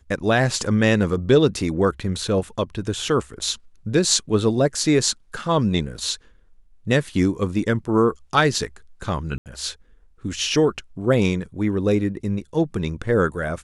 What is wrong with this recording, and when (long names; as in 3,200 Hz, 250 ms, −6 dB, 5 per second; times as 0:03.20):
0:09.38–0:09.46: drop-out 78 ms